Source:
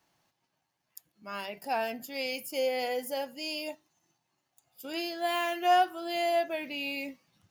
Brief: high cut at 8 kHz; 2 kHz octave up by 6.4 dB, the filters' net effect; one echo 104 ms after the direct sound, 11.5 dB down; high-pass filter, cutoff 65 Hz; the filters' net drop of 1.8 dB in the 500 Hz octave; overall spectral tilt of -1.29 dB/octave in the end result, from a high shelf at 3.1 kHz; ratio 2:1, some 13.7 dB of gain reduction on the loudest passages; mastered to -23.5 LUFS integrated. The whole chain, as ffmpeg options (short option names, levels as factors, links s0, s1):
-af "highpass=65,lowpass=8000,equalizer=f=500:t=o:g=-3.5,equalizer=f=2000:t=o:g=6.5,highshelf=f=3100:g=4.5,acompressor=threshold=0.00562:ratio=2,aecho=1:1:104:0.266,volume=6.68"